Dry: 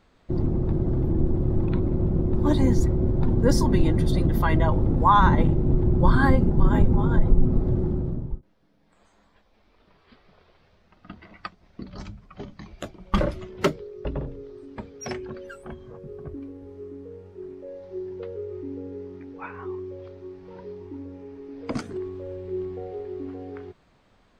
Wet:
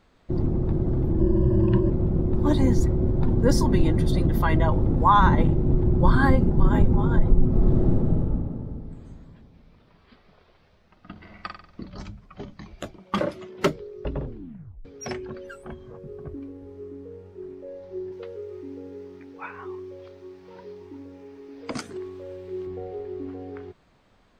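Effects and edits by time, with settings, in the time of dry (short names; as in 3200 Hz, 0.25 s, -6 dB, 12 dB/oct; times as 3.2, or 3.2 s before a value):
1.19–1.9 ripple EQ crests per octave 1.3, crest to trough 17 dB
7.48–8.28 reverb throw, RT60 2.7 s, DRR -3 dB
11.11–11.86 flutter echo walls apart 8.1 m, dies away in 0.54 s
13–13.64 HPF 190 Hz
14.23 tape stop 0.62 s
18.12–22.67 tilt +2 dB/oct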